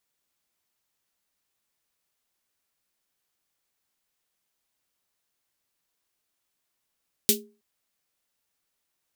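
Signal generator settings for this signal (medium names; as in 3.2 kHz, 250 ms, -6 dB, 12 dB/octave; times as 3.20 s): snare drum length 0.32 s, tones 220 Hz, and 410 Hz, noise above 2.9 kHz, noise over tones 10 dB, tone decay 0.35 s, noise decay 0.15 s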